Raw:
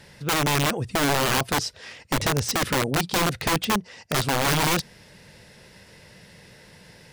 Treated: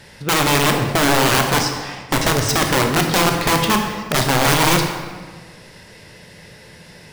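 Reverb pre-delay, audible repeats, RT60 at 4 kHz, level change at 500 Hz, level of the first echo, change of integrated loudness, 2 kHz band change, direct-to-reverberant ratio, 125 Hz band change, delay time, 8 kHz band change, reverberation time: 20 ms, no echo audible, 1.0 s, +7.5 dB, no echo audible, +7.0 dB, +7.0 dB, 3.0 dB, +6.5 dB, no echo audible, +6.5 dB, 1.5 s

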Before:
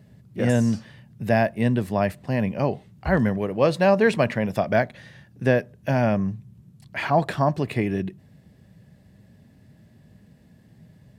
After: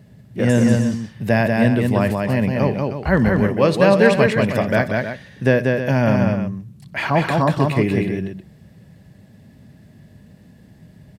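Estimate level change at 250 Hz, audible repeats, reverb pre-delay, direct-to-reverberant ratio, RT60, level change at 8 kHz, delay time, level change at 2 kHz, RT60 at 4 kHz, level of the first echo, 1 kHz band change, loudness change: +6.5 dB, 3, no reverb audible, no reverb audible, no reverb audible, can't be measured, 61 ms, +6.5 dB, no reverb audible, −18.5 dB, +3.0 dB, +5.5 dB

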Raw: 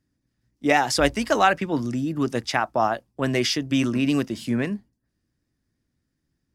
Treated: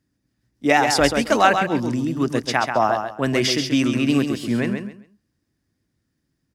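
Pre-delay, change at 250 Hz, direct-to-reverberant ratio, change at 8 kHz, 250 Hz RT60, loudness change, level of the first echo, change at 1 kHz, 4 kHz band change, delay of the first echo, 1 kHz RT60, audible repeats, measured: no reverb audible, +3.0 dB, no reverb audible, +3.5 dB, no reverb audible, +3.0 dB, −6.5 dB, +3.5 dB, +3.5 dB, 134 ms, no reverb audible, 3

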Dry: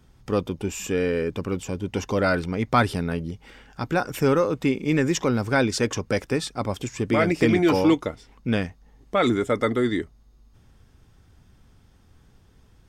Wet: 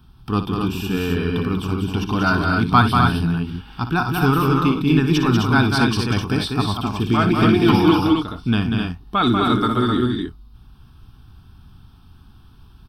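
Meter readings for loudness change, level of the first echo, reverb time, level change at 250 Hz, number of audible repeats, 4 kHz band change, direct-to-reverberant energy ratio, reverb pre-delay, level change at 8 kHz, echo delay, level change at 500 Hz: +5.0 dB, −11.0 dB, no reverb audible, +6.5 dB, 3, +8.5 dB, no reverb audible, no reverb audible, −3.5 dB, 58 ms, −1.0 dB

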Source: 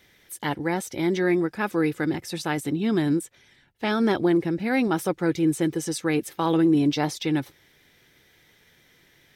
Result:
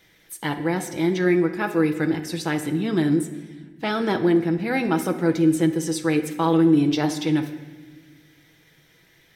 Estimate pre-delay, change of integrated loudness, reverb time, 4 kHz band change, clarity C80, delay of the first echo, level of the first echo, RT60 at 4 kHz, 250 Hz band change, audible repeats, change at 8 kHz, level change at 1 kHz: 6 ms, +2.5 dB, 1.3 s, +1.0 dB, 12.0 dB, no echo audible, no echo audible, 1.0 s, +2.5 dB, no echo audible, +1.0 dB, +1.5 dB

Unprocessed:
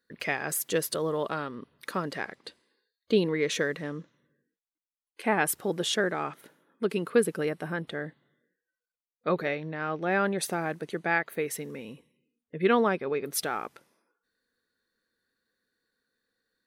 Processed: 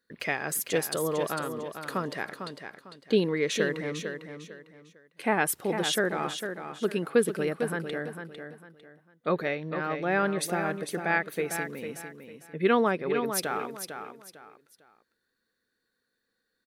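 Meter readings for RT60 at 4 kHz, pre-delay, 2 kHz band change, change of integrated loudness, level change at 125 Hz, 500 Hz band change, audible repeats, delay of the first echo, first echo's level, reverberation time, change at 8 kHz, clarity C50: no reverb audible, no reverb audible, +0.5 dB, 0.0 dB, +0.5 dB, +0.5 dB, 3, 451 ms, −8.0 dB, no reverb audible, +0.5 dB, no reverb audible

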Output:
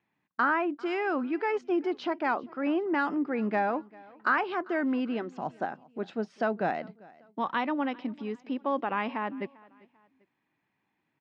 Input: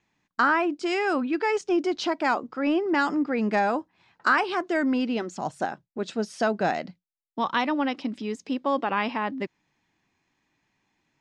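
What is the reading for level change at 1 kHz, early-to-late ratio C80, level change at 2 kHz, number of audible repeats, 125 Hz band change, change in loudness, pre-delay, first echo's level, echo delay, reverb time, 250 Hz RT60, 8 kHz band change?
−4.0 dB, no reverb audible, −5.0 dB, 2, −4.5 dB, −4.5 dB, no reverb audible, −23.5 dB, 395 ms, no reverb audible, no reverb audible, below −20 dB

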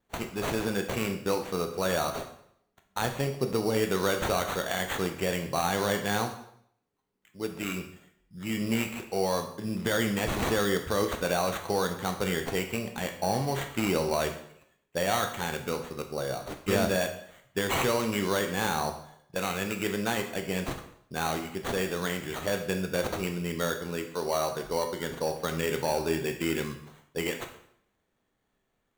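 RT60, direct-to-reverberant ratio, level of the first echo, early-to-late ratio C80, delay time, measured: 0.65 s, 5.0 dB, no echo audible, 12.0 dB, no echo audible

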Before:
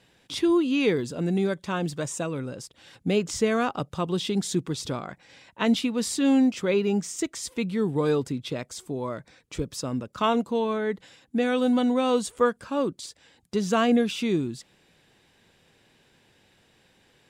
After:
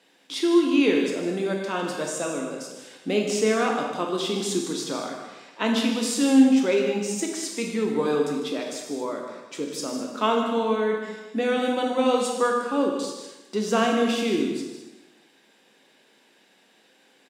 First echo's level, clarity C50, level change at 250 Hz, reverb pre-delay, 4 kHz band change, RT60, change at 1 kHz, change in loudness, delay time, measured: −11.5 dB, 2.5 dB, +1.5 dB, 6 ms, +3.0 dB, 1.1 s, +3.0 dB, +1.5 dB, 153 ms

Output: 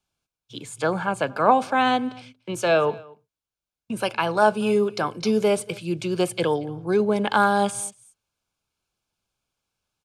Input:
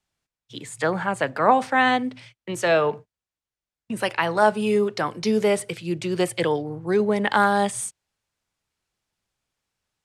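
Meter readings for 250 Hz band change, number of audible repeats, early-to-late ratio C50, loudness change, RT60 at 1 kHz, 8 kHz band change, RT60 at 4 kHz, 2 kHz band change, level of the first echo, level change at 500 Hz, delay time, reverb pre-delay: 0.0 dB, 1, no reverb audible, −0.5 dB, no reverb audible, −0.5 dB, no reverb audible, −2.5 dB, −23.5 dB, 0.0 dB, 233 ms, no reverb audible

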